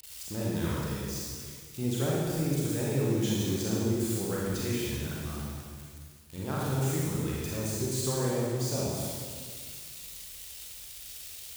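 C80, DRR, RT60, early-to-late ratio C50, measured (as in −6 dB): −0.5 dB, −6.0 dB, 1.8 s, −3.0 dB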